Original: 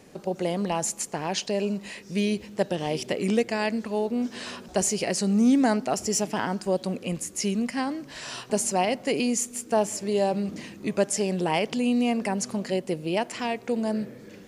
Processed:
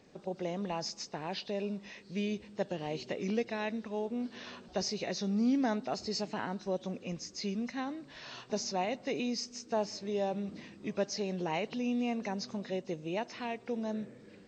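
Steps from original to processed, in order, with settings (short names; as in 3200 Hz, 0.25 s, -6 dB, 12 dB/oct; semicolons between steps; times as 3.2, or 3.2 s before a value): nonlinear frequency compression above 2700 Hz 1.5:1; gain -9 dB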